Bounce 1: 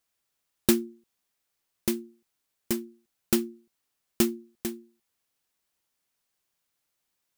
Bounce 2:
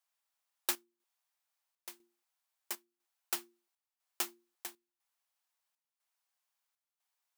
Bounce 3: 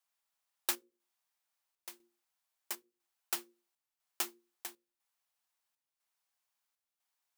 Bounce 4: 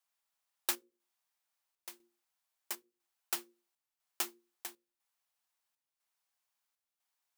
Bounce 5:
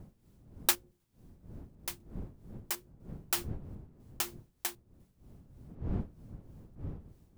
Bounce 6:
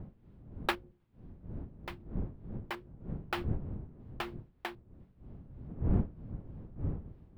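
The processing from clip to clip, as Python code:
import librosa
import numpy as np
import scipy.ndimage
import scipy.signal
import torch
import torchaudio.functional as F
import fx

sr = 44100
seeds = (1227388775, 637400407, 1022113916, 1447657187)

y1 = fx.ladder_highpass(x, sr, hz=630.0, resonance_pct=35)
y1 = fx.chopper(y1, sr, hz=1.0, depth_pct=65, duty_pct=75)
y1 = F.gain(torch.from_numpy(y1), 1.0).numpy()
y2 = fx.hum_notches(y1, sr, base_hz=60, count=9)
y3 = y2
y4 = fx.dmg_wind(y3, sr, seeds[0], corner_hz=160.0, level_db=-52.0)
y4 = y4 * (1.0 - 0.6 / 2.0 + 0.6 / 2.0 * np.cos(2.0 * np.pi * 3.2 * (np.arange(len(y4)) / sr)))
y4 = F.gain(torch.from_numpy(y4), 9.0).numpy()
y5 = fx.air_absorb(y4, sr, metres=450.0)
y5 = F.gain(torch.from_numpy(y5), 6.0).numpy()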